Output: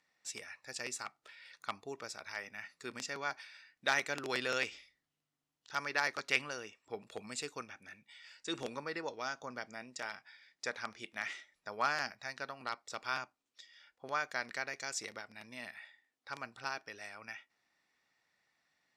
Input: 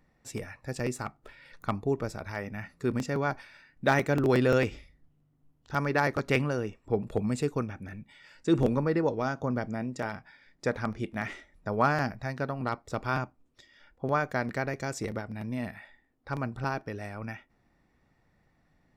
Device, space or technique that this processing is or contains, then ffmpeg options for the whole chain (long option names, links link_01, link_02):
piezo pickup straight into a mixer: -af "lowpass=5200,aderivative,volume=9dB"